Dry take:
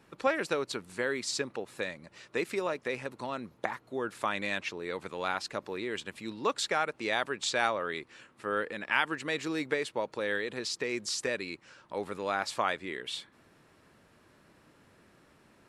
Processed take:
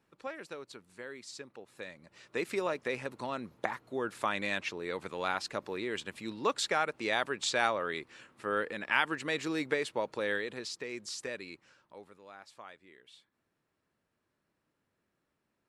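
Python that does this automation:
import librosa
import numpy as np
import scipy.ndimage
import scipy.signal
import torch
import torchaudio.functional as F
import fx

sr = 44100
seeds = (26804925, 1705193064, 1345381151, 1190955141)

y = fx.gain(x, sr, db=fx.line((1.51, -13.0), (2.55, -0.5), (10.3, -0.5), (10.8, -7.0), (11.64, -7.0), (12.19, -20.0)))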